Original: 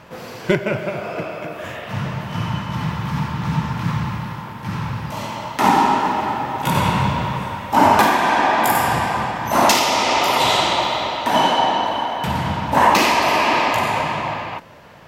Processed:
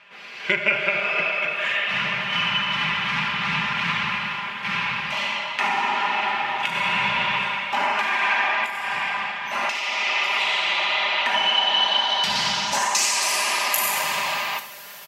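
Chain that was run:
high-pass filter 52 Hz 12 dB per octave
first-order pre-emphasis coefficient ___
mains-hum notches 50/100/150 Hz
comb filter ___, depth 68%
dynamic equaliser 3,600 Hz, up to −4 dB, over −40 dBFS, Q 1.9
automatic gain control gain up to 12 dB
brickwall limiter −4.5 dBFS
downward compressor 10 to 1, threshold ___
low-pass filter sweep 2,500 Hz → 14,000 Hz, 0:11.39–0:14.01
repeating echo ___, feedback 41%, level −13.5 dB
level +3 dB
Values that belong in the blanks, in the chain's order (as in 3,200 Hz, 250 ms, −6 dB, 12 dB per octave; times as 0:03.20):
0.97, 5 ms, −23 dBFS, 77 ms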